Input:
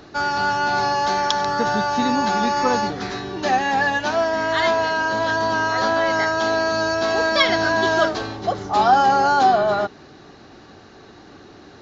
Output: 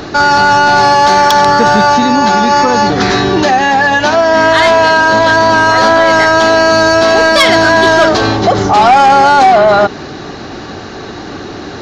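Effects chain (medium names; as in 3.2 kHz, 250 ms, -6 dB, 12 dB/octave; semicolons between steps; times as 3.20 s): 1.94–4.34 s: compression, threshold -23 dBFS, peak gain reduction 9 dB; saturation -14.5 dBFS, distortion -15 dB; loudness maximiser +20.5 dB; trim -1 dB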